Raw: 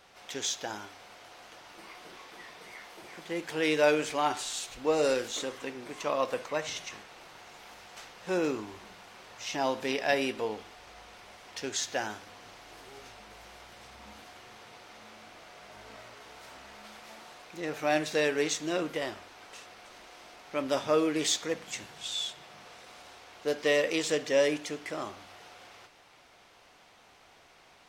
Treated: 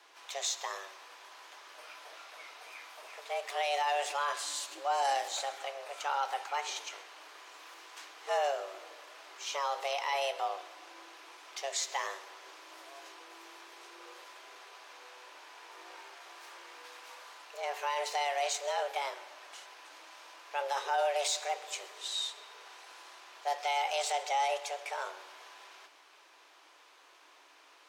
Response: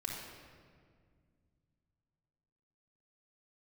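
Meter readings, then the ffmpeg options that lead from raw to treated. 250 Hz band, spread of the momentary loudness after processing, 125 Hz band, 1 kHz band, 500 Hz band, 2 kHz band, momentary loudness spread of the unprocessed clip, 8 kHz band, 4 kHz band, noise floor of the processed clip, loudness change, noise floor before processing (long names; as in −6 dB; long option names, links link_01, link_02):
−28.0 dB, 20 LU, below −40 dB, +4.0 dB, −7.5 dB, −4.0 dB, 23 LU, −2.0 dB, −2.0 dB, −60 dBFS, −3.5 dB, −59 dBFS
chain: -filter_complex "[0:a]alimiter=limit=-21dB:level=0:latency=1:release=11,afreqshift=280,asplit=2[link_01][link_02];[1:a]atrim=start_sample=2205,adelay=129[link_03];[link_02][link_03]afir=irnorm=-1:irlink=0,volume=-18.5dB[link_04];[link_01][link_04]amix=inputs=2:normalize=0,volume=-1.5dB"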